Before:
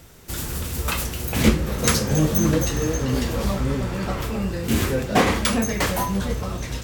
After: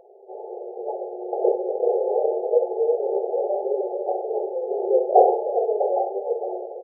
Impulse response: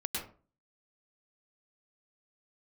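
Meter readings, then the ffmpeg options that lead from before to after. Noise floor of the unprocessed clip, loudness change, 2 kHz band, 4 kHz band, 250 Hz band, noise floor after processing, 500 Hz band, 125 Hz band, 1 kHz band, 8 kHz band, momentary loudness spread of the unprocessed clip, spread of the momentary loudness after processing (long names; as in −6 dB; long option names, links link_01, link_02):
−32 dBFS, −0.5 dB, below −40 dB, below −40 dB, below −10 dB, −38 dBFS, +7.0 dB, below −40 dB, +3.5 dB, below −40 dB, 8 LU, 13 LU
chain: -af "afftfilt=real='re*between(b*sr/4096,360,870)':imag='im*between(b*sr/4096,360,870)':win_size=4096:overlap=0.75,aecho=1:1:63|126:0.376|0.0601,volume=7dB"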